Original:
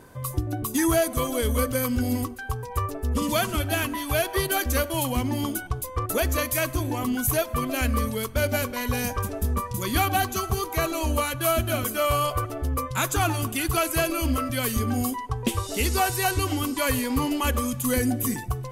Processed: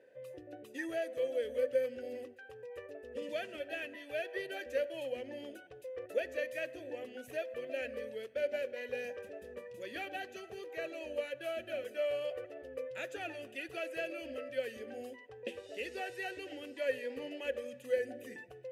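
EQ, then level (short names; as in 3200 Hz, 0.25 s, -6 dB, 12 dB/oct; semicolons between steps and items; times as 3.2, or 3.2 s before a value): vowel filter e; HPF 110 Hz 6 dB/oct; notches 50/100/150/200/250 Hz; -1.0 dB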